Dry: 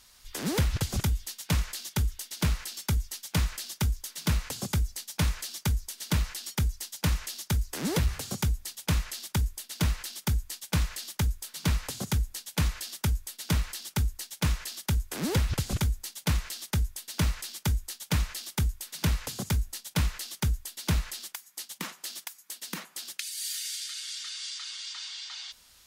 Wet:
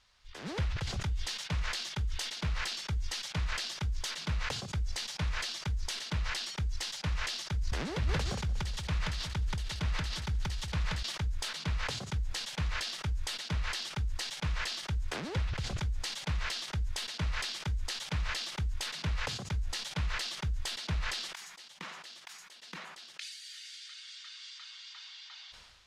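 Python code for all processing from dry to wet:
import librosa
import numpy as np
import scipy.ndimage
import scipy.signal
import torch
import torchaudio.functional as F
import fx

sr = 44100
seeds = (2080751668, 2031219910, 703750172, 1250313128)

y = fx.chain(x, sr, fx.echo_feedback(ms=180, feedback_pct=36, wet_db=-11.0),
    fx.sustainer(db_per_s=20.0), at=(7.54, 11.03))
y = scipy.signal.sosfilt(scipy.signal.butter(2, 3900.0, 'lowpass', fs=sr, output='sos'), y)
y = fx.peak_eq(y, sr, hz=260.0, db=-8.0, octaves=0.98)
y = fx.sustainer(y, sr, db_per_s=38.0)
y = y * librosa.db_to_amplitude(-6.0)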